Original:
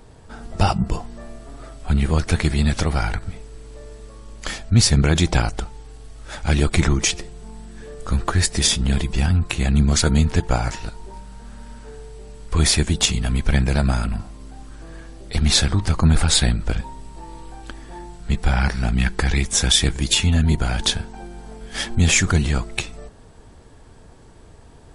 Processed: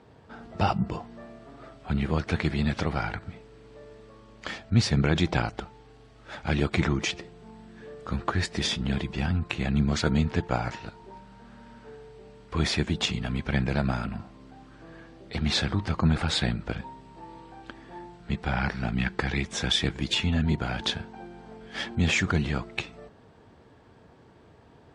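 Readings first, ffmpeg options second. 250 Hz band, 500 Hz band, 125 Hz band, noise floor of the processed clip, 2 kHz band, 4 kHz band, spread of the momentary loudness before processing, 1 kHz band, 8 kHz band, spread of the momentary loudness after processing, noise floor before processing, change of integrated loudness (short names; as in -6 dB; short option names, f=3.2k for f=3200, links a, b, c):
-5.0 dB, -4.5 dB, -8.5 dB, -54 dBFS, -5.0 dB, -8.0 dB, 21 LU, -4.5 dB, -17.0 dB, 21 LU, -45 dBFS, -8.0 dB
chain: -af "highpass=110,lowpass=3.6k,volume=-4.5dB"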